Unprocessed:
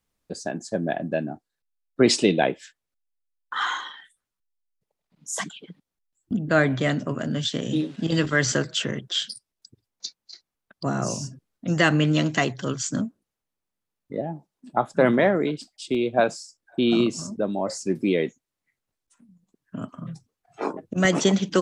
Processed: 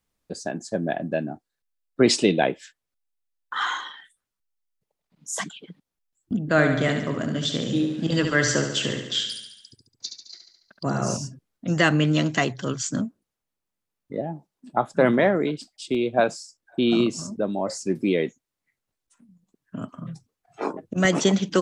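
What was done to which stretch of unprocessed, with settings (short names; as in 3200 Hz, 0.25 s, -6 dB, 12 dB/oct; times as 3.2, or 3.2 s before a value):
6.45–11.17 feedback echo 71 ms, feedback 58%, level -7 dB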